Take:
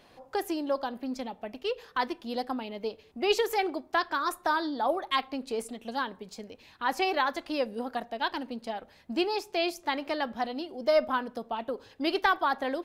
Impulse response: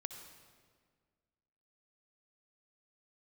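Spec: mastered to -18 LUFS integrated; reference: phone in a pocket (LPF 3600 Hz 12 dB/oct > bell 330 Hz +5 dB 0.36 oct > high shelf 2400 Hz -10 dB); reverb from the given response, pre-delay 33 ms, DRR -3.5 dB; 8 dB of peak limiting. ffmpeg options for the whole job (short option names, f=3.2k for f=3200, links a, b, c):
-filter_complex "[0:a]alimiter=limit=-20dB:level=0:latency=1,asplit=2[a][b];[1:a]atrim=start_sample=2205,adelay=33[c];[b][c]afir=irnorm=-1:irlink=0,volume=6dB[d];[a][d]amix=inputs=2:normalize=0,lowpass=3.6k,equalizer=f=330:t=o:w=0.36:g=5,highshelf=f=2.4k:g=-10,volume=10dB"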